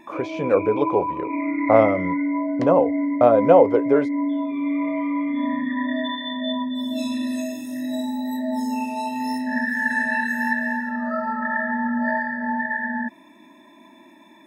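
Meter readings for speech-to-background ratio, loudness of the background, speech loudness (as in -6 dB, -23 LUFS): 5.5 dB, -25.0 LUFS, -19.5 LUFS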